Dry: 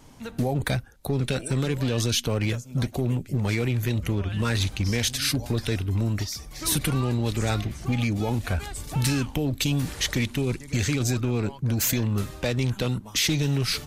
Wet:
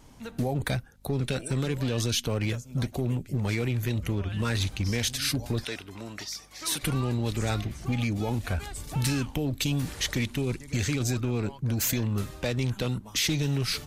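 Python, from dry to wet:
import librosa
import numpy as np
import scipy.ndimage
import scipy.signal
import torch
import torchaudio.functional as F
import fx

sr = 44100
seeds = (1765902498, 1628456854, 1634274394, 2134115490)

y = fx.weighting(x, sr, curve='A', at=(5.64, 6.83))
y = fx.add_hum(y, sr, base_hz=50, snr_db=31)
y = y * librosa.db_to_amplitude(-3.0)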